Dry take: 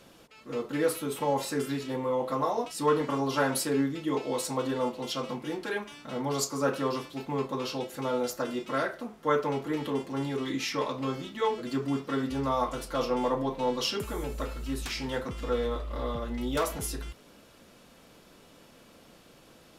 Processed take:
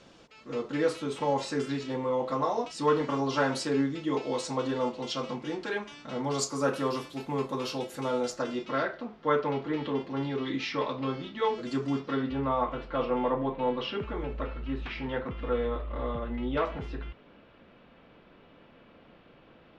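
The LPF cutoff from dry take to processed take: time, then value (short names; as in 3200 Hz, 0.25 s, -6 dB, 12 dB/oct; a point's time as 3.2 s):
LPF 24 dB/oct
6.17 s 6900 Hz
6.78 s 12000 Hz
7.89 s 12000 Hz
8.89 s 4500 Hz
11.39 s 4500 Hz
11.75 s 8400 Hz
12.42 s 3000 Hz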